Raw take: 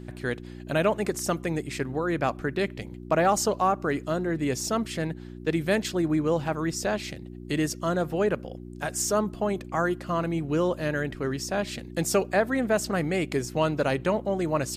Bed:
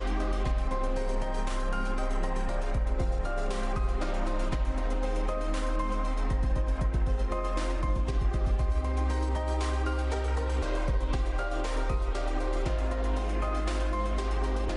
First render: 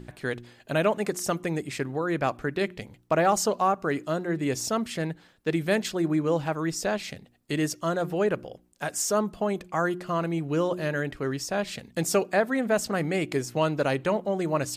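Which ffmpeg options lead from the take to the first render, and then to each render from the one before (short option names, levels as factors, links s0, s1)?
-af "bandreject=f=60:t=h:w=4,bandreject=f=120:t=h:w=4,bandreject=f=180:t=h:w=4,bandreject=f=240:t=h:w=4,bandreject=f=300:t=h:w=4,bandreject=f=360:t=h:w=4"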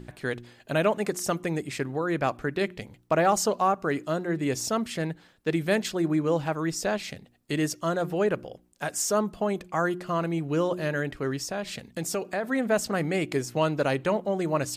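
-filter_complex "[0:a]asplit=3[s0][s1][s2];[s0]afade=t=out:st=11.5:d=0.02[s3];[s1]acompressor=threshold=0.0316:ratio=2:attack=3.2:release=140:knee=1:detection=peak,afade=t=in:st=11.5:d=0.02,afade=t=out:st=12.43:d=0.02[s4];[s2]afade=t=in:st=12.43:d=0.02[s5];[s3][s4][s5]amix=inputs=3:normalize=0"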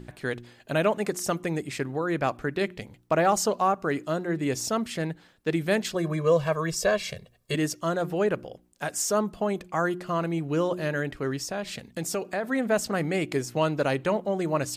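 -filter_complex "[0:a]asettb=1/sr,asplit=3[s0][s1][s2];[s0]atrim=end=5.944[s3];[s1]atrim=start=5.94:end=7.55,asetpts=PTS-STARTPTS,afade=t=in:d=0.004:c=qsin,afade=t=out:st=1.606:d=0.004:c=qsin,aecho=1:1:1.8:0.99,atrim=end_sample=71001[s4];[s2]atrim=start=7.546[s5];[s3][s4]acrossfade=d=0.004:c1=hsin:c2=qsin[s6];[s6][s5]acrossfade=d=0.004:c1=qsin:c2=hsin"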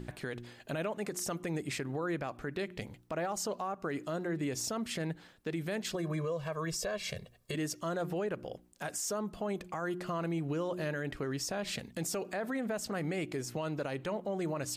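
-af "acompressor=threshold=0.0316:ratio=6,alimiter=level_in=1.41:limit=0.0631:level=0:latency=1:release=33,volume=0.708"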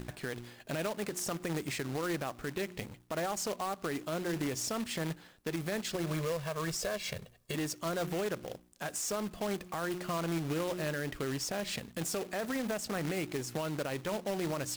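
-af "acrusher=bits=2:mode=log:mix=0:aa=0.000001"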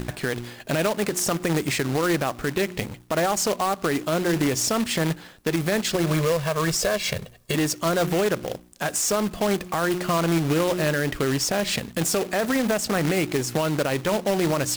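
-af "volume=3.98"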